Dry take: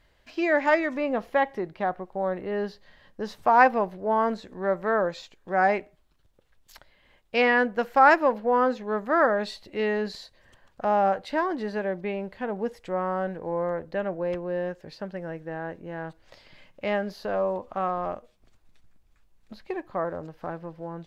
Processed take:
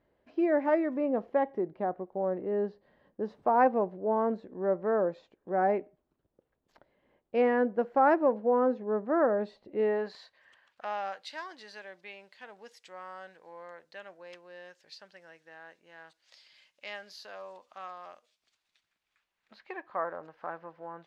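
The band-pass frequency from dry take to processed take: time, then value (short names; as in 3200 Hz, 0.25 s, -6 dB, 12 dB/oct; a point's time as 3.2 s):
band-pass, Q 0.93
9.76 s 350 Hz
10.19 s 1300 Hz
11.33 s 5400 Hz
18.15 s 5400 Hz
19.99 s 1300 Hz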